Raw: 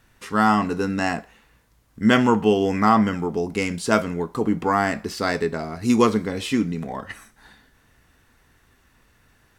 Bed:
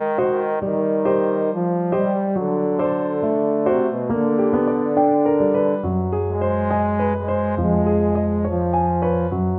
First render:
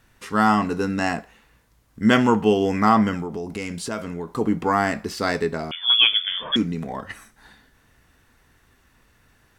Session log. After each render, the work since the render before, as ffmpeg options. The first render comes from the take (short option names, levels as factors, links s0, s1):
-filter_complex "[0:a]asettb=1/sr,asplit=3[s0][s1][s2];[s0]atrim=end=3.214[s3];[s1]atrim=start=3.21:end=4.28,asetpts=PTS-STARTPTS,afade=t=in:d=0.004:c=qsin,afade=t=out:st=1.066:d=0.004:c=qsin,acompressor=threshold=0.0447:ratio=3:attack=3.2:release=140:knee=1:detection=peak[s4];[s2]atrim=start=4.276[s5];[s3][s4]acrossfade=d=0.004:c1=hsin:c2=qsin[s6];[s6][s5]acrossfade=d=0.004:c1=qsin:c2=hsin,asettb=1/sr,asplit=3[s7][s8][s9];[s7]atrim=end=5.714[s10];[s8]atrim=start=5.71:end=6.56,asetpts=PTS-STARTPTS,afade=t=in:d=0.004:c=qsin,afade=t=out:st=0.846:d=0.004:c=qsin,lowpass=f=3100:t=q:w=0.5098,lowpass=f=3100:t=q:w=0.6013,lowpass=f=3100:t=q:w=0.9,lowpass=f=3100:t=q:w=2.563,afreqshift=-3600[s11];[s9]atrim=start=6.556[s12];[s10][s11]acrossfade=d=0.004:c1=hsin:c2=qsin[s13];[s13][s12]acrossfade=d=0.004:c1=qsin:c2=hsin"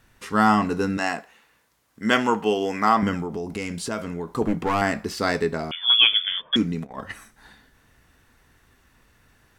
-filter_complex "[0:a]asettb=1/sr,asplit=3[s0][s1][s2];[s0]atrim=end=0.974[s3];[s1]atrim=start=0.97:end=3.03,asetpts=PTS-STARTPTS,afade=t=in:d=0.004:c=qsin,afade=t=out:st=2.056:d=0.004:c=qsin,highpass=f=480:p=1[s4];[s2]atrim=start=3.026[s5];[s3][s4]acrossfade=d=0.004:c1=hsin:c2=qsin[s6];[s6][s5]acrossfade=d=0.004:c1=qsin:c2=hsin,asettb=1/sr,asplit=3[s7][s8][s9];[s7]atrim=end=4.424[s10];[s8]atrim=start=4.42:end=4.82,asetpts=PTS-STARTPTS,afade=t=in:d=0.004:c=qsin,afade=t=out:st=0.396:d=0.004:c=qsin,aeval=exprs='clip(val(0),-1,0.0794)':c=same[s11];[s9]atrim=start=4.816[s12];[s10][s11]acrossfade=d=0.004:c1=hsin:c2=qsin[s13];[s13][s12]acrossfade=d=0.004:c1=qsin:c2=hsin,asplit=3[s14][s15][s16];[s14]afade=t=out:st=6.28:d=0.02[s17];[s15]agate=range=0.112:threshold=0.0316:ratio=16:release=100:detection=peak,afade=t=in:st=6.28:d=0.02,afade=t=out:st=6.97:d=0.02[s18];[s16]afade=t=in:st=6.97:d=0.02[s19];[s17][s18][s19]amix=inputs=3:normalize=0"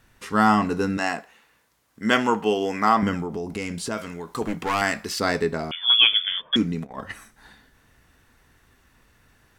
-filter_complex "[0:a]asettb=1/sr,asplit=3[s0][s1][s2];[s0]atrim=end=3.974[s3];[s1]atrim=start=3.97:end=5.2,asetpts=PTS-STARTPTS,afade=t=in:d=0.004:c=qsin,afade=t=out:st=1.226:d=0.004:c=qsin,tiltshelf=f=1100:g=-5.5[s4];[s2]atrim=start=5.196[s5];[s3][s4]acrossfade=d=0.004:c1=hsin:c2=qsin[s6];[s6][s5]acrossfade=d=0.004:c1=qsin:c2=hsin"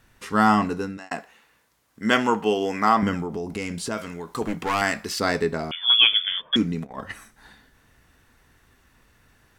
-filter_complex "[0:a]asplit=2[s0][s1];[s0]atrim=end=1.11,asetpts=PTS-STARTPTS,afade=t=out:st=0.61:d=0.5[s2];[s1]atrim=start=1.11,asetpts=PTS-STARTPTS,afade=t=in:d=0.004:c=hsin[s3];[s2][s3]concat=n=2:v=0:a=1"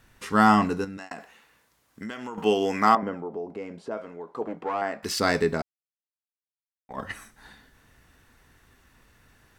-filter_complex "[0:a]asettb=1/sr,asplit=3[s0][s1][s2];[s0]atrim=end=0.844[s3];[s1]atrim=start=0.84:end=2.38,asetpts=PTS-STARTPTS,afade=t=in:d=0.004:c=qsin,afade=t=out:st=1.536:d=0.004:c=qsin,acompressor=threshold=0.0251:ratio=10:attack=3.2:release=140:knee=1:detection=peak[s4];[s2]atrim=start=2.376[s5];[s3][s4]acrossfade=d=0.004:c1=hsin:c2=qsin[s6];[s6][s5]acrossfade=d=0.004:c1=qsin:c2=hsin,asettb=1/sr,asplit=3[s7][s8][s9];[s7]atrim=end=2.954[s10];[s8]atrim=start=2.95:end=5.03,asetpts=PTS-STARTPTS,afade=t=in:d=0.004:c=qsin,afade=t=out:st=2.076:d=0.004:c=qsin,bandpass=f=570:t=q:w=1.3[s11];[s9]atrim=start=5.026[s12];[s10][s11]acrossfade=d=0.004:c1=hsin:c2=qsin[s13];[s13][s12]acrossfade=d=0.004:c1=qsin:c2=hsin,asplit=3[s14][s15][s16];[s14]atrim=end=5.62,asetpts=PTS-STARTPTS,afade=t=out:st=5.616:d=0.004:c=hsin[s17];[s15]atrim=start=5.62:end=6.89,asetpts=PTS-STARTPTS,volume=0[s18];[s16]atrim=start=6.89,asetpts=PTS-STARTPTS,afade=t=in:d=0.004:c=hsin[s19];[s17][s18][s19]concat=n=3:v=0:a=1"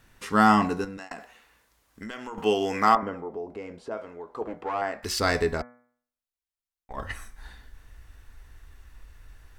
-af "asubboost=boost=11:cutoff=53,bandreject=f=122.2:t=h:w=4,bandreject=f=244.4:t=h:w=4,bandreject=f=366.6:t=h:w=4,bandreject=f=488.8:t=h:w=4,bandreject=f=611:t=h:w=4,bandreject=f=733.2:t=h:w=4,bandreject=f=855.4:t=h:w=4,bandreject=f=977.6:t=h:w=4,bandreject=f=1099.8:t=h:w=4,bandreject=f=1222:t=h:w=4,bandreject=f=1344.2:t=h:w=4,bandreject=f=1466.4:t=h:w=4,bandreject=f=1588.6:t=h:w=4,bandreject=f=1710.8:t=h:w=4,bandreject=f=1833:t=h:w=4,bandreject=f=1955.2:t=h:w=4,bandreject=f=2077.4:t=h:w=4,bandreject=f=2199.6:t=h:w=4,bandreject=f=2321.8:t=h:w=4"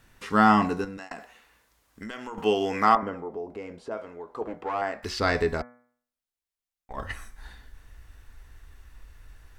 -filter_complex "[0:a]acrossover=split=5100[s0][s1];[s1]acompressor=threshold=0.00316:ratio=4:attack=1:release=60[s2];[s0][s2]amix=inputs=2:normalize=0"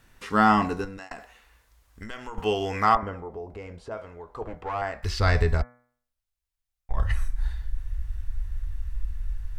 -af "asubboost=boost=11:cutoff=83"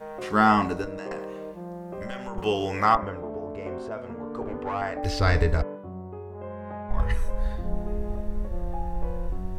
-filter_complex "[1:a]volume=0.141[s0];[0:a][s0]amix=inputs=2:normalize=0"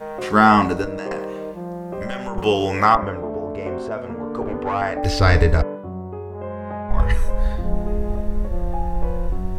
-af "volume=2.24,alimiter=limit=0.708:level=0:latency=1"